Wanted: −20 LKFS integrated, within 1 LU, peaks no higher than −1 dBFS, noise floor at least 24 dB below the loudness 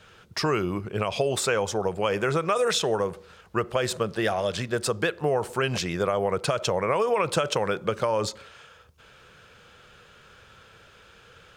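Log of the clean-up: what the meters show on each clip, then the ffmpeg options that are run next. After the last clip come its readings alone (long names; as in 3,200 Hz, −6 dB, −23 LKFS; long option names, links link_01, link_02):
integrated loudness −26.5 LKFS; sample peak −11.5 dBFS; target loudness −20.0 LKFS
→ -af "volume=6.5dB"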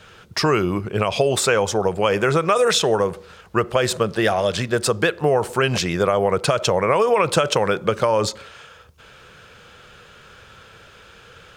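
integrated loudness −20.0 LKFS; sample peak −5.0 dBFS; background noise floor −47 dBFS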